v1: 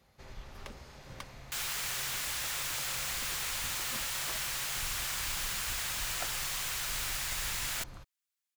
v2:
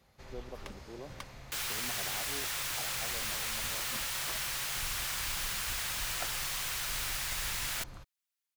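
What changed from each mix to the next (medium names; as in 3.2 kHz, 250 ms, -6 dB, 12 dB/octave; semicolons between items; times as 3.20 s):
speech: unmuted; second sound: add peaking EQ 7.2 kHz -2.5 dB 0.28 oct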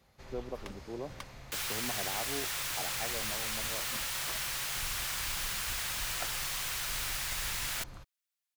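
speech +6.0 dB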